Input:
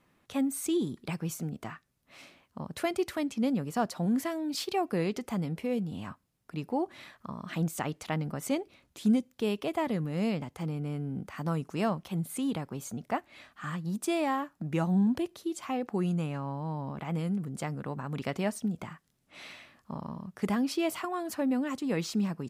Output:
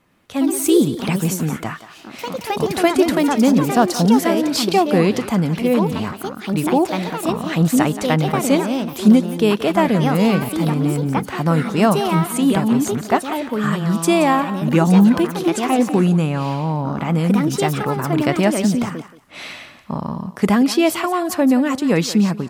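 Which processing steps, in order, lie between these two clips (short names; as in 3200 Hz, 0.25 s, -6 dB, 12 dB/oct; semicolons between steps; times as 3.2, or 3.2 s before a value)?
echoes that change speed 0.115 s, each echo +3 st, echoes 2, each echo -6 dB; thinning echo 0.176 s, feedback 17%, level -12.5 dB; AGC gain up to 7.5 dB; gain +6.5 dB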